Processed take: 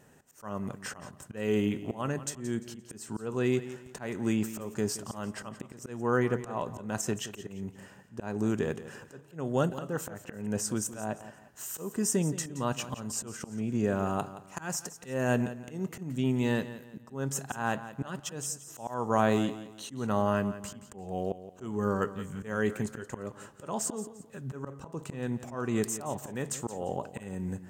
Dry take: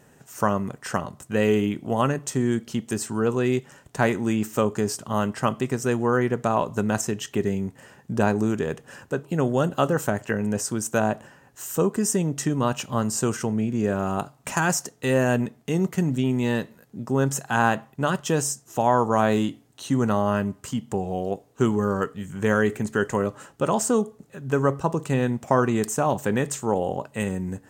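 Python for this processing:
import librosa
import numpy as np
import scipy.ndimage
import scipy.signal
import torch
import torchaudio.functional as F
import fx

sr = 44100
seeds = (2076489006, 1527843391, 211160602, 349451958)

y = fx.auto_swell(x, sr, attack_ms=280.0)
y = fx.echo_feedback(y, sr, ms=173, feedback_pct=33, wet_db=-14)
y = F.gain(torch.from_numpy(y), -4.5).numpy()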